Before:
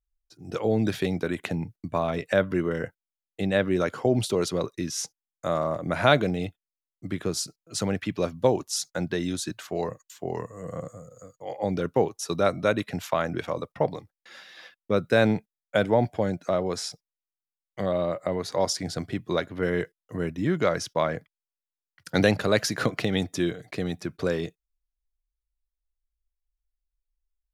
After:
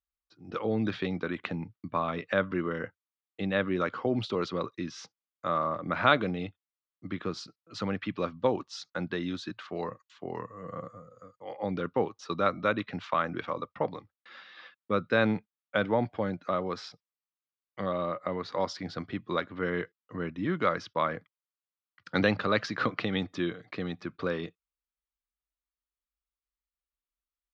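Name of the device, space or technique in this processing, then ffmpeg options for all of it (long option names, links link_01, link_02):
guitar cabinet: -af "highpass=80,equalizer=frequency=85:width_type=q:width=4:gain=-4,equalizer=frequency=140:width_type=q:width=4:gain=-8,equalizer=frequency=400:width_type=q:width=4:gain=-4,equalizer=frequency=670:width_type=q:width=4:gain=-6,equalizer=frequency=1200:width_type=q:width=4:gain=8,lowpass=frequency=4200:width=0.5412,lowpass=frequency=4200:width=1.3066,volume=-3dB"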